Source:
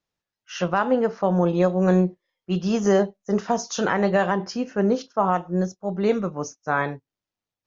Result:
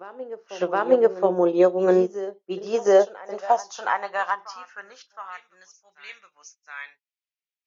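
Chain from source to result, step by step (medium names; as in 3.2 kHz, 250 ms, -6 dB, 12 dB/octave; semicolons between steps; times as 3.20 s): reverse echo 718 ms -12 dB; high-pass sweep 380 Hz -> 2.3 kHz, 2.44–5.68 s; upward expansion 1.5:1, over -29 dBFS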